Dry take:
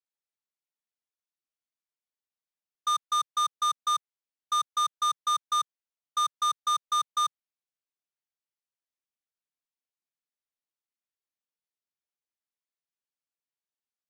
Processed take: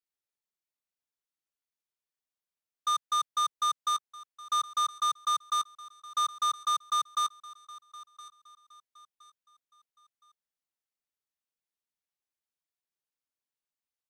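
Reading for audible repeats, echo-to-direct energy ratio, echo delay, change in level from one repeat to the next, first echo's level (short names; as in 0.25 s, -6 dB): 2, -18.5 dB, 1.017 s, -9.0 dB, -19.0 dB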